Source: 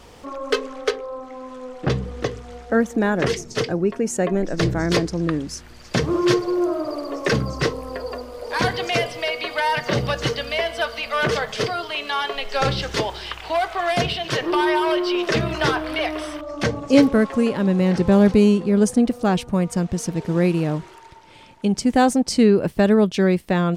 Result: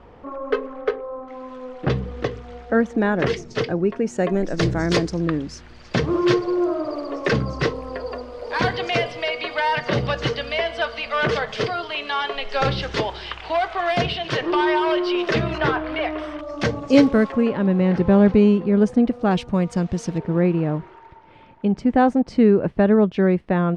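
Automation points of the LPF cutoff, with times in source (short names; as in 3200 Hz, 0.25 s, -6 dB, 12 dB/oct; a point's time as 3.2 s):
1600 Hz
from 1.28 s 3800 Hz
from 4.18 s 7500 Hz
from 5.19 s 4300 Hz
from 15.58 s 2500 Hz
from 16.39 s 5900 Hz
from 17.32 s 2600 Hz
from 19.31 s 4800 Hz
from 20.18 s 1900 Hz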